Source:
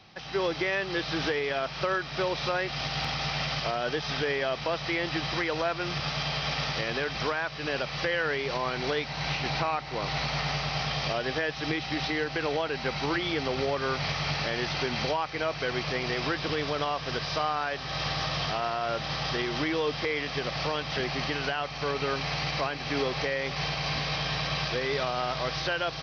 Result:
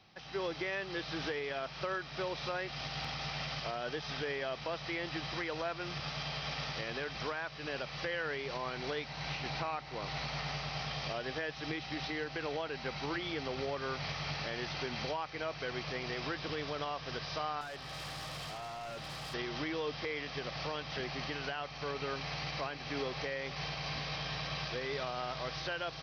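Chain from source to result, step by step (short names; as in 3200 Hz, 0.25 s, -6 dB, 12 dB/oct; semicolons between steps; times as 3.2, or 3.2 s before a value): 17.61–19.34 hard clip -32 dBFS, distortion -19 dB; gain -8.5 dB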